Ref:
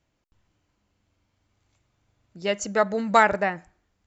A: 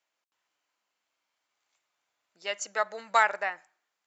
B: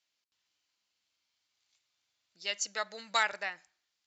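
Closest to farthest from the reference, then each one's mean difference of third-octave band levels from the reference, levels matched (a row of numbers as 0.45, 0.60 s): A, B; 5.5, 7.0 dB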